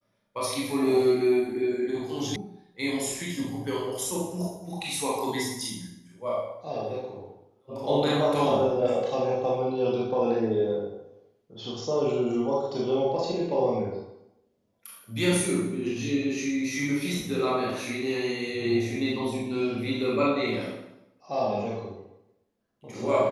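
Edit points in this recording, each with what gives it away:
2.36 s: sound stops dead

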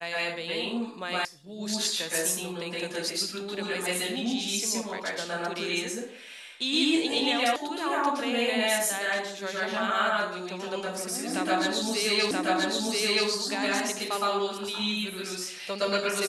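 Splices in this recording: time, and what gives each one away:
1.25 s: sound stops dead
7.56 s: sound stops dead
12.31 s: repeat of the last 0.98 s

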